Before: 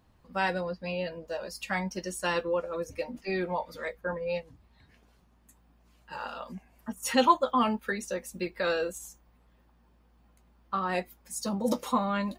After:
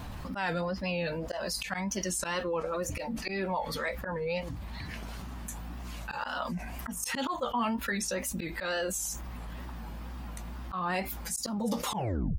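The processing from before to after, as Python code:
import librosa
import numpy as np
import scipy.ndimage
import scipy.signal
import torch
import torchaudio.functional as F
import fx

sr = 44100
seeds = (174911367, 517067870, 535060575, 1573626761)

y = fx.tape_stop_end(x, sr, length_s=0.54)
y = fx.peak_eq(y, sr, hz=440.0, db=-6.5, octaves=0.72)
y = fx.auto_swell(y, sr, attack_ms=176.0)
y = fx.wow_flutter(y, sr, seeds[0], rate_hz=2.1, depth_cents=110.0)
y = fx.env_flatten(y, sr, amount_pct=70)
y = y * librosa.db_to_amplitude(-5.0)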